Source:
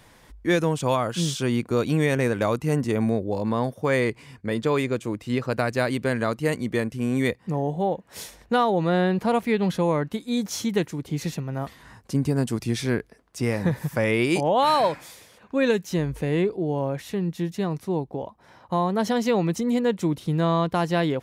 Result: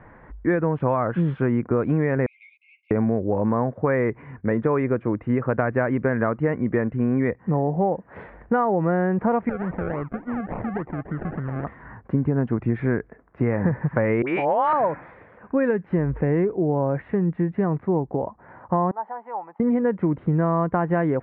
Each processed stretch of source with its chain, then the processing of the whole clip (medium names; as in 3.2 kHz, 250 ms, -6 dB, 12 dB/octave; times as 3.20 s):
2.26–2.91 s: brick-wall FIR band-pass 2.1–11 kHz + three-phase chorus
9.49–11.65 s: decimation with a swept rate 37×, swing 60% 3.5 Hz + compression 4:1, threshold -32 dBFS
14.22–14.73 s: low-pass 9 kHz + tilt EQ +4.5 dB/octave + phase dispersion highs, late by 59 ms, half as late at 1.2 kHz
18.91–19.60 s: band-pass filter 860 Hz, Q 7.6 + tilt EQ +3 dB/octave
whole clip: steep low-pass 1.9 kHz 36 dB/octave; compression, threshold -24 dBFS; trim +6.5 dB